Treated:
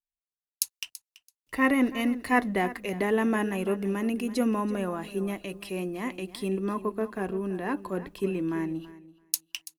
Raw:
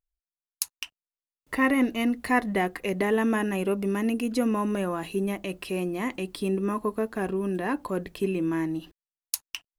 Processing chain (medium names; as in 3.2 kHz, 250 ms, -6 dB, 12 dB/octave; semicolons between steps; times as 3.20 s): on a send: feedback delay 333 ms, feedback 24%, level -14.5 dB; on the sum: three bands expanded up and down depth 40%; trim -2 dB